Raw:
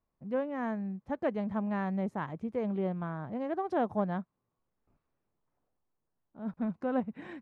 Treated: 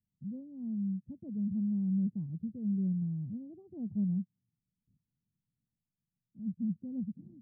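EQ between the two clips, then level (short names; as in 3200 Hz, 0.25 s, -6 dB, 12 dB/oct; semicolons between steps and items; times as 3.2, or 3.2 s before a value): ladder low-pass 230 Hz, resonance 45%; tilt +2.5 dB/oct; bell 110 Hz +11.5 dB 1.7 oct; +6.0 dB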